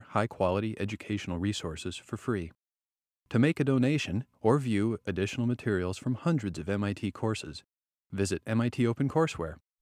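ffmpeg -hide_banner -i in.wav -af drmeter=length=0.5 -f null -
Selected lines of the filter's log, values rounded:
Channel 1: DR: 13.3
Overall DR: 13.3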